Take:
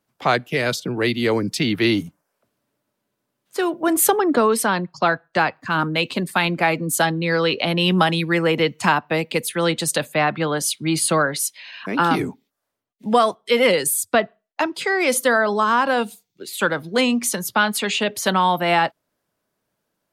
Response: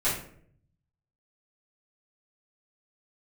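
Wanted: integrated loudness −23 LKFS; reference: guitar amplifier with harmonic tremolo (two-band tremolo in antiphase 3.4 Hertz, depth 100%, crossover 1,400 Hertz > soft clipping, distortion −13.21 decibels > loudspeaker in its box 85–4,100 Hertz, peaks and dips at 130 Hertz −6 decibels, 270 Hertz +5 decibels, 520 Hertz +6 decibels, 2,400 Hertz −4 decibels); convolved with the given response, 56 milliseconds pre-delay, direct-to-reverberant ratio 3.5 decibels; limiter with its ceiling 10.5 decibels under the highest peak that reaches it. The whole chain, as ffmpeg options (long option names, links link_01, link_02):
-filter_complex "[0:a]alimiter=limit=-15dB:level=0:latency=1,asplit=2[link_01][link_02];[1:a]atrim=start_sample=2205,adelay=56[link_03];[link_02][link_03]afir=irnorm=-1:irlink=0,volume=-14.5dB[link_04];[link_01][link_04]amix=inputs=2:normalize=0,acrossover=split=1400[link_05][link_06];[link_05]aeval=exprs='val(0)*(1-1/2+1/2*cos(2*PI*3.4*n/s))':channel_layout=same[link_07];[link_06]aeval=exprs='val(0)*(1-1/2-1/2*cos(2*PI*3.4*n/s))':channel_layout=same[link_08];[link_07][link_08]amix=inputs=2:normalize=0,asoftclip=threshold=-22dB,highpass=85,equalizer=frequency=130:width_type=q:width=4:gain=-6,equalizer=frequency=270:width_type=q:width=4:gain=5,equalizer=frequency=520:width_type=q:width=4:gain=6,equalizer=frequency=2400:width_type=q:width=4:gain=-4,lowpass=frequency=4100:width=0.5412,lowpass=frequency=4100:width=1.3066,volume=6dB"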